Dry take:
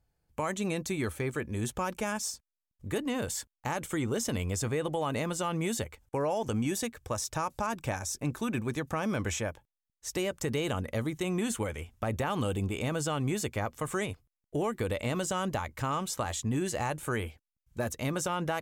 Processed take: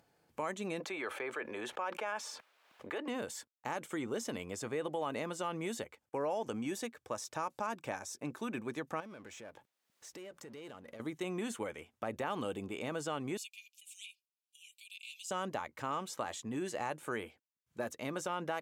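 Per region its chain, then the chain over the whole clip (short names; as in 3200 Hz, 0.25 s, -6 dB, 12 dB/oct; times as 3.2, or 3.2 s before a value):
0.8–3.08 three-band isolator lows -22 dB, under 430 Hz, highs -16 dB, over 3500 Hz + notch 1900 Hz, Q 27 + fast leveller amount 70%
9–11 compressor 12:1, threshold -43 dBFS + power-law curve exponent 0.7
13.37–15.31 Chebyshev high-pass 2400 Hz, order 8 + comb 4.5 ms, depth 75%
whole clip: HPF 240 Hz 12 dB/oct; high shelf 5500 Hz -8.5 dB; upward compressor, threshold -53 dBFS; gain -4.5 dB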